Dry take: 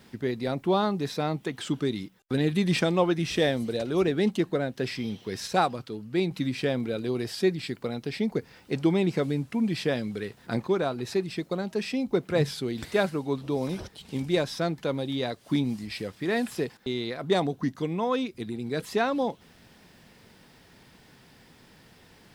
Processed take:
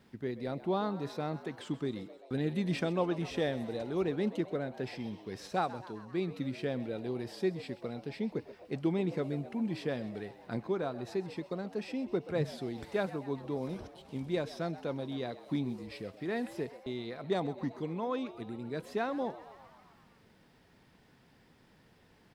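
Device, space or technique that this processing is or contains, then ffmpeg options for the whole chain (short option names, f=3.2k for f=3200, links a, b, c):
behind a face mask: -filter_complex "[0:a]highshelf=f=2.9k:g=-7.5,asplit=8[a][b][c][d][e][f][g][h];[b]adelay=130,afreqshift=93,volume=-16.5dB[i];[c]adelay=260,afreqshift=186,volume=-20.2dB[j];[d]adelay=390,afreqshift=279,volume=-24dB[k];[e]adelay=520,afreqshift=372,volume=-27.7dB[l];[f]adelay=650,afreqshift=465,volume=-31.5dB[m];[g]adelay=780,afreqshift=558,volume=-35.2dB[n];[h]adelay=910,afreqshift=651,volume=-39dB[o];[a][i][j][k][l][m][n][o]amix=inputs=8:normalize=0,volume=-7.5dB"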